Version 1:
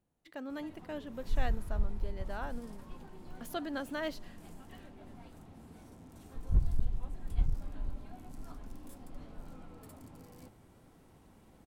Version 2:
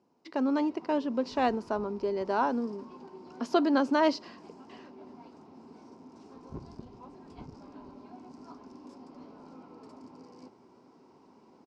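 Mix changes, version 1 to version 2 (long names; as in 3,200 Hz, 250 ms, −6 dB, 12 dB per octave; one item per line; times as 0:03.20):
speech +10.0 dB
master: add loudspeaker in its box 210–6,000 Hz, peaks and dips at 250 Hz +7 dB, 390 Hz +9 dB, 970 Hz +10 dB, 1,800 Hz −7 dB, 3,400 Hz −7 dB, 5,100 Hz +8 dB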